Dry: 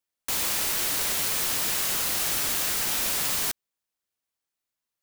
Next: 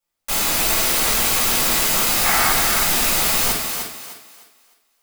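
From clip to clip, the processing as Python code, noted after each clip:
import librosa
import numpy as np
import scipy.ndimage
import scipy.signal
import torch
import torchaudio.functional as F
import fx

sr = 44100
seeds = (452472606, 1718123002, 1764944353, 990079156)

y = fx.spec_box(x, sr, start_s=2.23, length_s=0.28, low_hz=660.0, high_hz=2300.0, gain_db=8)
y = fx.echo_thinned(y, sr, ms=304, feedback_pct=31, hz=210.0, wet_db=-5.5)
y = fx.room_shoebox(y, sr, seeds[0], volume_m3=330.0, walls='furnished', distance_m=6.7)
y = F.gain(torch.from_numpy(y), -2.0).numpy()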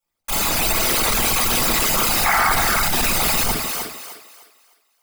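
y = fx.envelope_sharpen(x, sr, power=2.0)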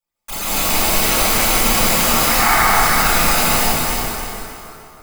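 y = fx.rev_plate(x, sr, seeds[1], rt60_s=2.9, hf_ratio=0.65, predelay_ms=115, drr_db=-8.5)
y = F.gain(torch.from_numpy(y), -5.0).numpy()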